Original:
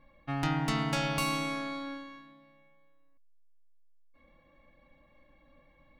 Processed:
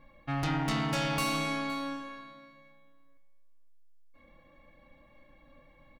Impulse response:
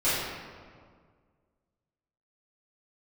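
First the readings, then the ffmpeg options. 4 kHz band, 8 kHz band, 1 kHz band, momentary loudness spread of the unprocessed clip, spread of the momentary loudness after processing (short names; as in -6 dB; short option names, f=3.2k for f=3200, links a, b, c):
+1.0 dB, +1.0 dB, +0.5 dB, 12 LU, 15 LU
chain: -af "flanger=delay=8:depth=2.3:regen=-83:speed=0.54:shape=sinusoidal,asoftclip=type=tanh:threshold=-33dB,aecho=1:1:516:0.119,volume=8dB"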